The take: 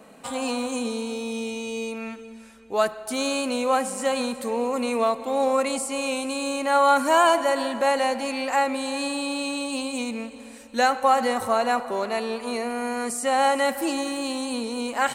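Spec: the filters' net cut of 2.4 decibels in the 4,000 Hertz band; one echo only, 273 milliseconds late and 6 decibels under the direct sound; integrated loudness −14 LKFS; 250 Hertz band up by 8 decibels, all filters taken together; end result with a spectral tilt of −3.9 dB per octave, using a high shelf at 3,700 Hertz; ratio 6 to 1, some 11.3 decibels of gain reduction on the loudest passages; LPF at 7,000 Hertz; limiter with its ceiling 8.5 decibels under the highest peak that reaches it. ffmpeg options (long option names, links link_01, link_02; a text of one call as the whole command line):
ffmpeg -i in.wav -af "lowpass=7000,equalizer=frequency=250:width_type=o:gain=8.5,highshelf=frequency=3700:gain=7,equalizer=frequency=4000:width_type=o:gain=-7,acompressor=threshold=-26dB:ratio=6,alimiter=level_in=1dB:limit=-24dB:level=0:latency=1,volume=-1dB,aecho=1:1:273:0.501,volume=18dB" out.wav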